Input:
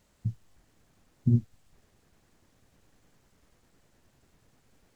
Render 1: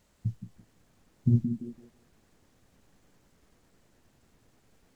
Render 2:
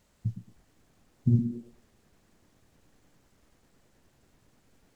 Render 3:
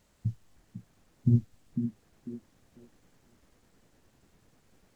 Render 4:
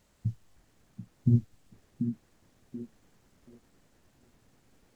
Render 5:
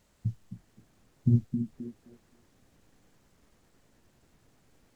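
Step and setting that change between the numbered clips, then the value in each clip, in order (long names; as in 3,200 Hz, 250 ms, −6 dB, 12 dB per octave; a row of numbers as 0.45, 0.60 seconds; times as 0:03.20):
echo through a band-pass that steps, delay time: 168, 111, 497, 733, 262 milliseconds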